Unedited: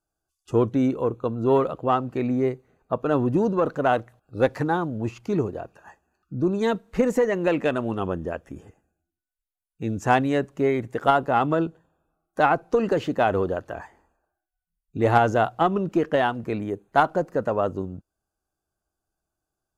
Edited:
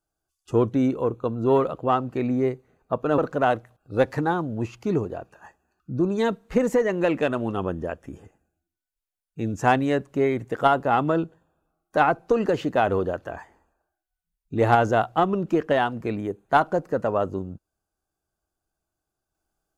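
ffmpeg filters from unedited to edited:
ffmpeg -i in.wav -filter_complex "[0:a]asplit=2[link_01][link_02];[link_01]atrim=end=3.182[link_03];[link_02]atrim=start=3.608[link_04];[link_03][link_04]acrossfade=duration=0.004:curve1=hsin:curve2=hsin" out.wav

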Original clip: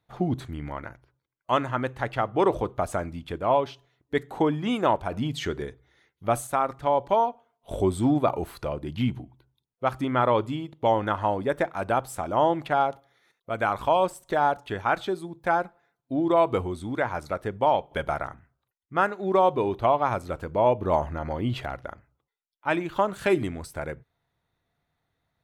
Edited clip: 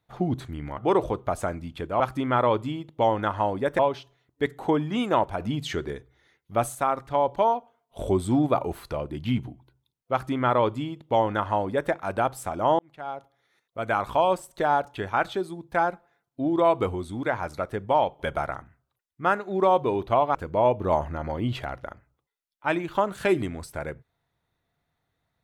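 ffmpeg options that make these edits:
ffmpeg -i in.wav -filter_complex "[0:a]asplit=6[link_01][link_02][link_03][link_04][link_05][link_06];[link_01]atrim=end=0.782[link_07];[link_02]atrim=start=2.288:end=3.512[link_08];[link_03]atrim=start=9.838:end=11.632[link_09];[link_04]atrim=start=3.508:end=12.51,asetpts=PTS-STARTPTS,afade=type=out:start_time=8.998:duration=0.004:curve=hsin[link_10];[link_05]atrim=start=12.51:end=20.072,asetpts=PTS-STARTPTS,afade=type=in:duration=1.11[link_11];[link_06]atrim=start=20.358[link_12];[link_07][link_08]acrossfade=duration=0.004:curve1=hsin:curve2=hsin[link_13];[link_13][link_09]acrossfade=duration=0.004:curve1=hsin:curve2=hsin[link_14];[link_10][link_11]concat=n=2:v=0:a=1[link_15];[link_14][link_15]acrossfade=duration=0.004:curve1=hsin:curve2=hsin[link_16];[link_16][link_12]acrossfade=duration=0.004:curve1=hsin:curve2=hsin" out.wav

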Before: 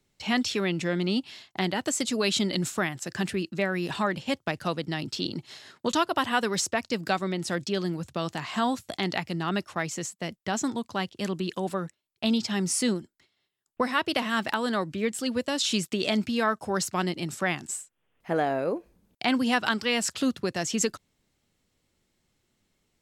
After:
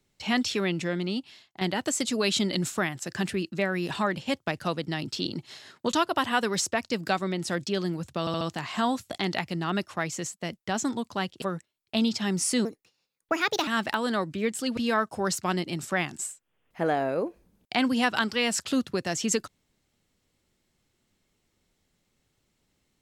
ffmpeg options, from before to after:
ffmpeg -i in.wav -filter_complex "[0:a]asplit=9[link_01][link_02][link_03][link_04][link_05][link_06][link_07][link_08][link_09];[link_01]atrim=end=1.61,asetpts=PTS-STARTPTS,afade=type=out:start_time=0.68:duration=0.93:silence=0.281838[link_10];[link_02]atrim=start=1.61:end=8.272,asetpts=PTS-STARTPTS,afade=type=in:duration=0.004:curve=hsin:silence=0.281838[link_11];[link_03]atrim=start=8.198:end=8.272[link_12];[link_04]atrim=start=8.198:end=8.272[link_13];[link_05]atrim=start=8.198:end=11.212[link_14];[link_06]atrim=start=11.708:end=12.944[link_15];[link_07]atrim=start=12.94:end=14.27,asetpts=PTS-STARTPTS,asetrate=57330,aresample=44100[link_16];[link_08]atrim=start=14.266:end=15.372[link_17];[link_09]atrim=start=16.268[link_18];[link_10][link_11]concat=n=2:v=0:a=1[link_19];[link_19][link_12]acrossfade=duration=0.004:curve1=hsin:curve2=hsin[link_20];[link_20][link_13]acrossfade=duration=0.004:curve1=hsin:curve2=hsin[link_21];[link_21][link_14]acrossfade=duration=0.004:curve1=hsin:curve2=hsin[link_22];[link_22][link_15]acrossfade=duration=0.004:curve1=hsin:curve2=hsin[link_23];[link_23][link_16]acrossfade=duration=0.004:curve1=hsin:curve2=hsin[link_24];[link_24][link_17]acrossfade=duration=0.004:curve1=hsin:curve2=hsin[link_25];[link_25][link_18]acrossfade=duration=0.004:curve1=hsin:curve2=hsin" out.wav

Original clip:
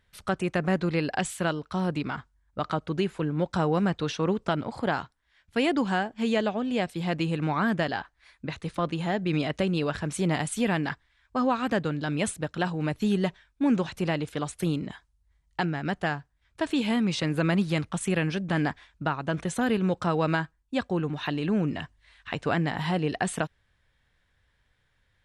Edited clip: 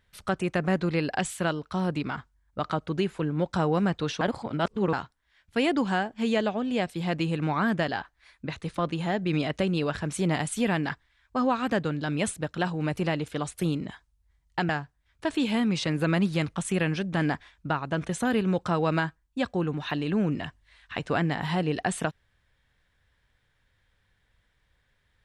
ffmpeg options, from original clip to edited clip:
ffmpeg -i in.wav -filter_complex "[0:a]asplit=5[link_01][link_02][link_03][link_04][link_05];[link_01]atrim=end=4.212[link_06];[link_02]atrim=start=4.208:end=4.932,asetpts=PTS-STARTPTS,areverse[link_07];[link_03]atrim=start=4.928:end=12.972[link_08];[link_04]atrim=start=13.978:end=15.702[link_09];[link_05]atrim=start=16.048[link_10];[link_06][link_07]acrossfade=duration=0.004:curve1=hsin:curve2=hsin[link_11];[link_11][link_08]acrossfade=duration=0.004:curve1=hsin:curve2=hsin[link_12];[link_12][link_09]acrossfade=duration=0.004:curve1=hsin:curve2=hsin[link_13];[link_13][link_10]acrossfade=duration=0.004:curve1=hsin:curve2=hsin" out.wav

